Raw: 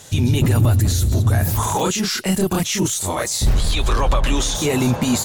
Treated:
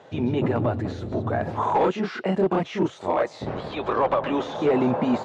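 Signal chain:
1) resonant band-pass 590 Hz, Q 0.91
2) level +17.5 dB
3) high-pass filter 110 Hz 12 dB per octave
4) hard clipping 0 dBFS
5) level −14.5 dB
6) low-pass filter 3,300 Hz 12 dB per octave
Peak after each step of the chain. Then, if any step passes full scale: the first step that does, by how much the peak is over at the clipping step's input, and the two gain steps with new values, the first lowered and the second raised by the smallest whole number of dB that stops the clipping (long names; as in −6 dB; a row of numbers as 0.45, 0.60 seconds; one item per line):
−12.5, +5.0, +5.0, 0.0, −14.5, −14.0 dBFS
step 2, 5.0 dB
step 2 +12.5 dB, step 5 −9.5 dB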